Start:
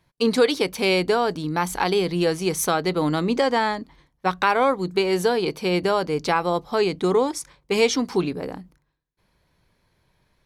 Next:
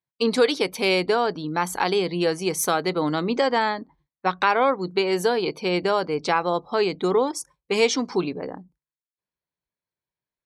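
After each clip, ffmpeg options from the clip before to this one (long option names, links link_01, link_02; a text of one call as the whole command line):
ffmpeg -i in.wav -af "afftdn=noise_reduction=26:noise_floor=-44,highpass=frequency=210:poles=1" out.wav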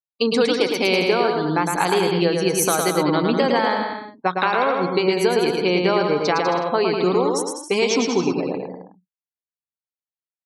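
ffmpeg -i in.wav -filter_complex "[0:a]afftdn=noise_reduction=25:noise_floor=-37,acompressor=threshold=-21dB:ratio=6,asplit=2[link_01][link_02];[link_02]aecho=0:1:110|198|268.4|324.7|369.8:0.631|0.398|0.251|0.158|0.1[link_03];[link_01][link_03]amix=inputs=2:normalize=0,volume=5dB" out.wav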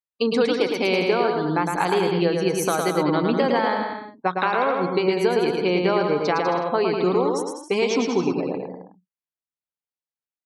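ffmpeg -i in.wav -af "highshelf=frequency=4300:gain=-9,volume=-1.5dB" out.wav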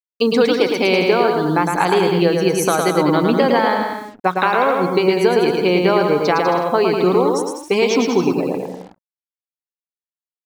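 ffmpeg -i in.wav -af "acrusher=bits=7:mix=0:aa=0.5,volume=5.5dB" out.wav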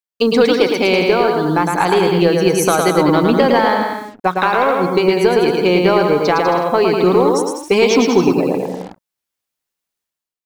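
ffmpeg -i in.wav -filter_complex "[0:a]asplit=2[link_01][link_02];[link_02]aeval=exprs='clip(val(0),-1,0.251)':channel_layout=same,volume=-8dB[link_03];[link_01][link_03]amix=inputs=2:normalize=0,dynaudnorm=framelen=110:gausssize=7:maxgain=13dB,volume=-1dB" out.wav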